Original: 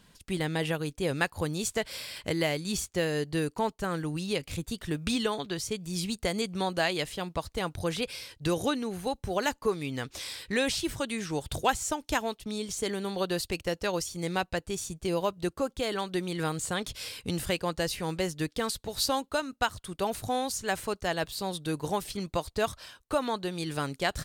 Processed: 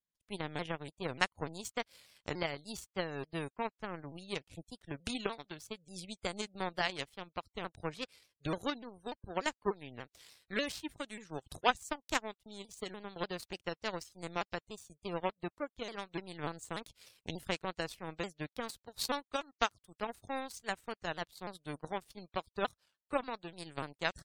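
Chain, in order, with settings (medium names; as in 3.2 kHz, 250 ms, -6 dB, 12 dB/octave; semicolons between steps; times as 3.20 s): power-law waveshaper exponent 2; spectral gate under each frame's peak -25 dB strong; vibrato with a chosen wave saw down 3.4 Hz, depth 160 cents; trim +3 dB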